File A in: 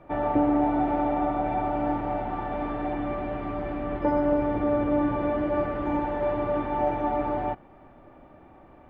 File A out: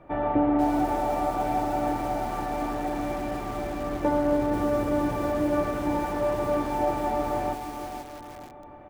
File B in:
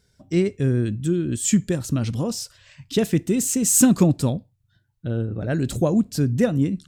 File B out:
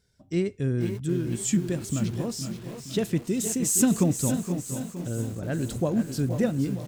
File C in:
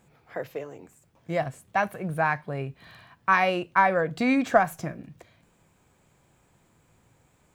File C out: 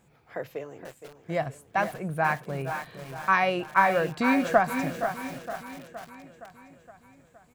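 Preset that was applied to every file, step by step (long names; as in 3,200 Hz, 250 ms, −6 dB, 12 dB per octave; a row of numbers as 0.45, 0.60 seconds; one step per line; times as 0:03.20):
on a send: repeating echo 467 ms, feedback 59%, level −12 dB
on the sum: feedback echo at a low word length 490 ms, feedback 35%, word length 6 bits, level −9 dB
loudness normalisation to −27 LKFS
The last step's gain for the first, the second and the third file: −0.5, −6.0, −1.5 decibels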